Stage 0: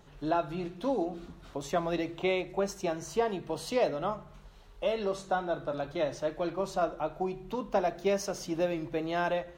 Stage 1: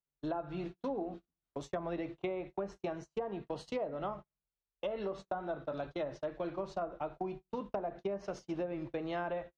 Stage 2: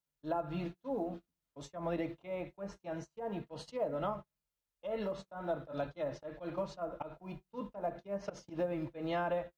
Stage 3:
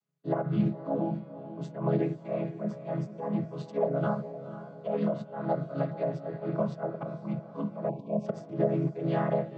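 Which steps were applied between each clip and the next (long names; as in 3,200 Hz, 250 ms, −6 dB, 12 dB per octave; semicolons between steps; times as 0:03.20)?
treble cut that deepens with the level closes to 1,200 Hz, closed at −24 dBFS; noise gate −38 dBFS, range −42 dB; downward compressor, threshold −30 dBFS, peak gain reduction 8 dB; level −3 dB
volume swells 104 ms; floating-point word with a short mantissa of 6 bits; notch comb filter 380 Hz; level +3.5 dB
channel vocoder with a chord as carrier minor triad, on C#3; feedback delay with all-pass diffusion 487 ms, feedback 47%, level −12.5 dB; time-frequency box erased 0:07.89–0:08.26, 1,100–2,200 Hz; level +9 dB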